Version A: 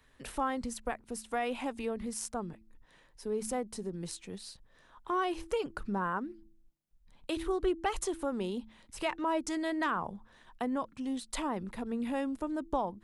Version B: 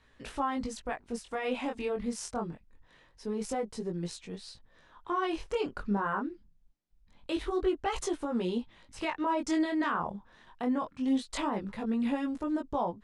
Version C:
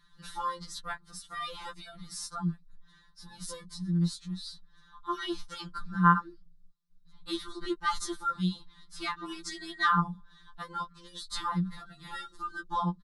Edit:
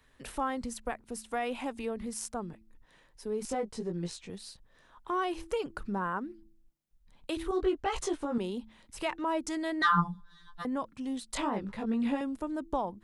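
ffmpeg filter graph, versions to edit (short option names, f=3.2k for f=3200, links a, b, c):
-filter_complex "[1:a]asplit=3[a][b][c];[0:a]asplit=5[d][e][f][g][h];[d]atrim=end=3.452[i];[a]atrim=start=3.448:end=4.302[j];[e]atrim=start=4.298:end=7.512[k];[b]atrim=start=7.508:end=8.382[l];[f]atrim=start=8.378:end=9.822[m];[2:a]atrim=start=9.818:end=10.652[n];[g]atrim=start=10.648:end=11.362[o];[c]atrim=start=11.358:end=12.212[p];[h]atrim=start=12.208[q];[i][j]acrossfade=d=0.004:c1=hsin:c2=hsin[r];[r][k]acrossfade=d=0.004:c1=hsin:c2=hsin[s];[s][l]acrossfade=d=0.004:c1=hsin:c2=hsin[t];[t][m]acrossfade=d=0.004:c1=hsin:c2=hsin[u];[u][n]acrossfade=d=0.004:c1=hsin:c2=hsin[v];[v][o]acrossfade=d=0.004:c1=hsin:c2=hsin[w];[w][p]acrossfade=d=0.004:c1=hsin:c2=hsin[x];[x][q]acrossfade=d=0.004:c1=hsin:c2=hsin"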